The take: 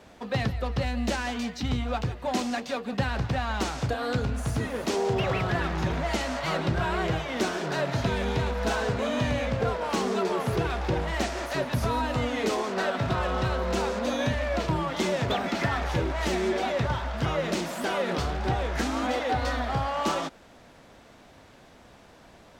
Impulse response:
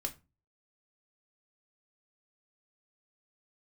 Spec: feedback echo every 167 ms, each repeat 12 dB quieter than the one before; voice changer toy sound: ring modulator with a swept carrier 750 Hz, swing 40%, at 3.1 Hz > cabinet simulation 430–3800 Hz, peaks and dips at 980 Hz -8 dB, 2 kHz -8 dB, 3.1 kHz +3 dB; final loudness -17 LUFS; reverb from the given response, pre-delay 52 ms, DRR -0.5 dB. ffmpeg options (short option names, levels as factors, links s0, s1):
-filter_complex "[0:a]aecho=1:1:167|334|501:0.251|0.0628|0.0157,asplit=2[s0][s1];[1:a]atrim=start_sample=2205,adelay=52[s2];[s1][s2]afir=irnorm=-1:irlink=0,volume=1.06[s3];[s0][s3]amix=inputs=2:normalize=0,aeval=exprs='val(0)*sin(2*PI*750*n/s+750*0.4/3.1*sin(2*PI*3.1*n/s))':c=same,highpass=430,equalizer=f=980:t=q:w=4:g=-8,equalizer=f=2000:t=q:w=4:g=-8,equalizer=f=3100:t=q:w=4:g=3,lowpass=f=3800:w=0.5412,lowpass=f=3800:w=1.3066,volume=3.98"